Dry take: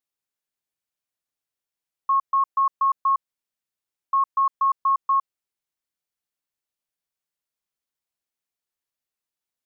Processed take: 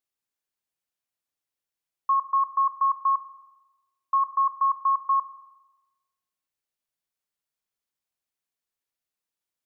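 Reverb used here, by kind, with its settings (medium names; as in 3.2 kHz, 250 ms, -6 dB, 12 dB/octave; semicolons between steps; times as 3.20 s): spring tank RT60 1.1 s, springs 43 ms, chirp 45 ms, DRR 12.5 dB; trim -1 dB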